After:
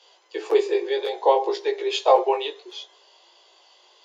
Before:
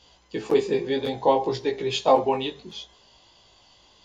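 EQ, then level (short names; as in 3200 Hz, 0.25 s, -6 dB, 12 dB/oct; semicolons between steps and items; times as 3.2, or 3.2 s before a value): steep high-pass 340 Hz 96 dB/oct; high shelf 6500 Hz -5 dB; +2.0 dB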